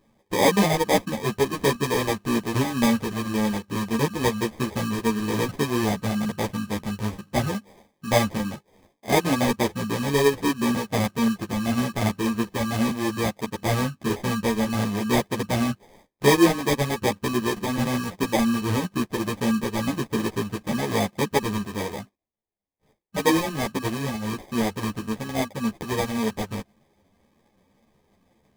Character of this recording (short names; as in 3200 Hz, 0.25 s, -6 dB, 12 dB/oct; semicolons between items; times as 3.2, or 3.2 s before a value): aliases and images of a low sample rate 1400 Hz, jitter 0%; a shimmering, thickened sound